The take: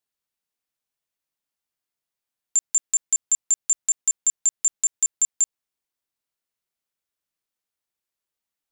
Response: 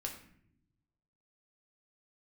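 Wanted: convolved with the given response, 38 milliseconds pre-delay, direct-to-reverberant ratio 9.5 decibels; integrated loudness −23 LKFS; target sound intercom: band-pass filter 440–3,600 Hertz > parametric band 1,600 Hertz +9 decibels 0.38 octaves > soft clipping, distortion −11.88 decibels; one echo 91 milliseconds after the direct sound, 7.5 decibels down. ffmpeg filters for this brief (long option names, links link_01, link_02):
-filter_complex "[0:a]aecho=1:1:91:0.422,asplit=2[link_01][link_02];[1:a]atrim=start_sample=2205,adelay=38[link_03];[link_02][link_03]afir=irnorm=-1:irlink=0,volume=-9dB[link_04];[link_01][link_04]amix=inputs=2:normalize=0,highpass=440,lowpass=3600,equalizer=frequency=1600:width_type=o:width=0.38:gain=9,asoftclip=threshold=-33.5dB,volume=15dB"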